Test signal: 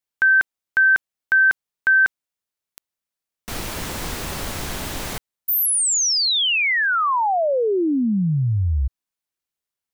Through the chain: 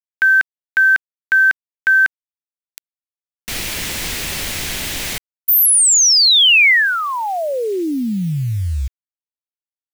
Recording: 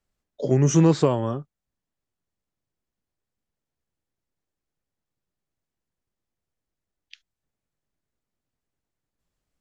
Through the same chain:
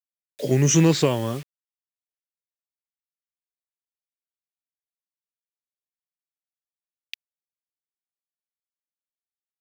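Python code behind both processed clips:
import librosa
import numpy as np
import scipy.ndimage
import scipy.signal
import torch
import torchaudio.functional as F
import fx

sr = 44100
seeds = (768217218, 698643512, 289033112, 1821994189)

y = fx.quant_dither(x, sr, seeds[0], bits=8, dither='none')
y = fx.high_shelf_res(y, sr, hz=1600.0, db=7.5, q=1.5)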